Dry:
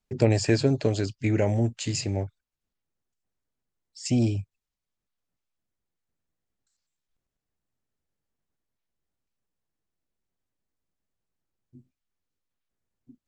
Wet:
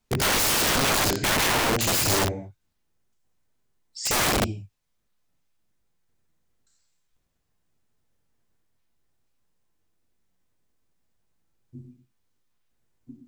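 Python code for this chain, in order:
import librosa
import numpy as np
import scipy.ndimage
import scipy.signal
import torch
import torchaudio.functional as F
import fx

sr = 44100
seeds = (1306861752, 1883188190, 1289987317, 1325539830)

y = fx.rev_gated(x, sr, seeds[0], gate_ms=270, shape='falling', drr_db=0.5)
y = (np.mod(10.0 ** (24.0 / 20.0) * y + 1.0, 2.0) - 1.0) / 10.0 ** (24.0 / 20.0)
y = F.gain(torch.from_numpy(y), 6.5).numpy()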